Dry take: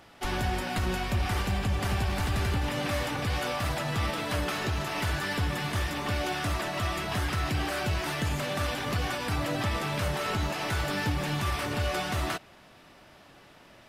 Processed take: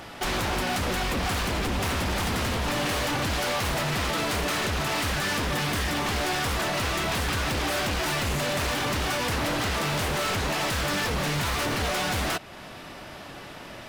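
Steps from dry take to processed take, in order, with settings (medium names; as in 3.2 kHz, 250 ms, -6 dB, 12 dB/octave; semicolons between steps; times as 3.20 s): in parallel at +3 dB: compression 4:1, threshold -43 dBFS, peak gain reduction 16 dB; on the sum: wavefolder -27 dBFS; trim +5 dB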